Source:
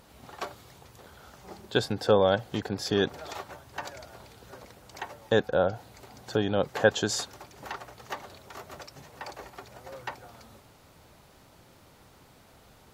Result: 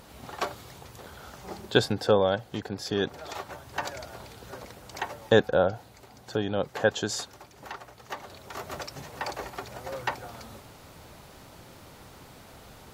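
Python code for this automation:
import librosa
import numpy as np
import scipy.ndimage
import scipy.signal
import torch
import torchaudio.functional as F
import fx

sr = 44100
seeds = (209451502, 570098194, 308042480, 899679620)

y = fx.gain(x, sr, db=fx.line((1.65, 5.5), (2.34, -2.5), (2.98, -2.5), (3.71, 5.0), (5.24, 5.0), (6.0, -2.0), (8.03, -2.0), (8.71, 7.0)))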